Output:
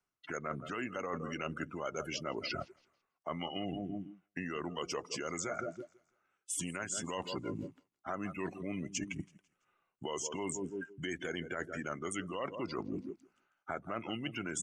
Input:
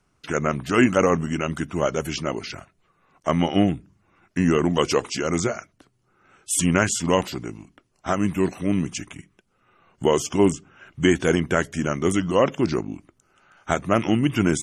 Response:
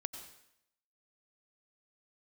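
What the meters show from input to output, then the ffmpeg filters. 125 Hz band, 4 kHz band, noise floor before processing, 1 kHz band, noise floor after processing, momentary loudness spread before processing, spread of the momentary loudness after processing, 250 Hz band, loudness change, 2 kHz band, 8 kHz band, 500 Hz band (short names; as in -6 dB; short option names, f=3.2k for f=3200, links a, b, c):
-19.5 dB, -12.0 dB, -68 dBFS, -14.5 dB, under -85 dBFS, 15 LU, 7 LU, -18.5 dB, -17.0 dB, -13.5 dB, -12.0 dB, -17.5 dB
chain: -filter_complex "[0:a]aecho=1:1:166|332|498|664:0.158|0.065|0.0266|0.0109,alimiter=limit=-11dB:level=0:latency=1:release=181,afftdn=nr=26:nf=-33,acrossover=split=86|1200|7800[a][b][c][d];[a]acompressor=threshold=-52dB:ratio=4[e];[b]acompressor=threshold=-30dB:ratio=4[f];[c]acompressor=threshold=-37dB:ratio=4[g];[d]acompressor=threshold=-37dB:ratio=4[h];[e][f][g][h]amix=inputs=4:normalize=0,lowshelf=f=310:g=-11,areverse,acompressor=threshold=-48dB:ratio=6,areverse,volume=11.5dB"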